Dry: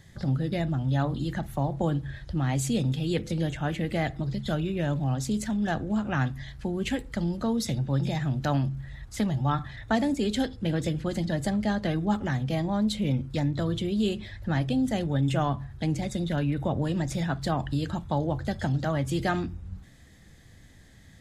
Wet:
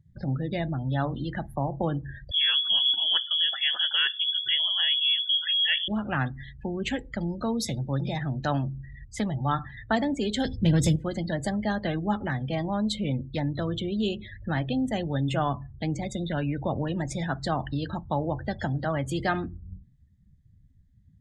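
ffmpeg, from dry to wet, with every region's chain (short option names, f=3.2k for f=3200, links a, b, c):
-filter_complex "[0:a]asettb=1/sr,asplit=3[a][b][c];[a]atrim=end=2.314[d];[b]atrim=start=2.31:end=5.88,asetpts=PTS-STARTPTS,afade=t=in:d=0.004:c=qsin,afade=t=out:st=3.566:d=0.004:c=qsin,equalizer=f=1.8k:w=4.9:g=6,lowpass=f=3k:t=q:w=0.5098,lowpass=f=3k:t=q:w=0.6013,lowpass=f=3k:t=q:w=0.9,lowpass=f=3k:t=q:w=2.563,afreqshift=-3500[e];[c]atrim=start=5.876[f];[d][e]acrossfade=d=0.004:c1=hsin:c2=qsin[g];[g][f]acrossfade=d=0.004:c1=qsin:c2=hsin,asettb=1/sr,asplit=3[h][i][j];[h]atrim=end=10.454[k];[i]atrim=start=10.45:end=10.96,asetpts=PTS-STARTPTS,afade=t=in:d=0.004:c=qsin,afade=t=out:st=0.506:d=0.004:c=qsin,asoftclip=type=hard:threshold=-20dB,bass=f=250:g=12,treble=f=4k:g=11[l];[j]atrim=start=10.956[m];[k][l]acrossfade=d=0.004:c1=hsin:c2=qsin[n];[n][m]acrossfade=d=0.004:c1=qsin:c2=hsin,afftdn=nr=34:nf=-42,lowshelf=f=430:g=-5.5,volume=2.5dB"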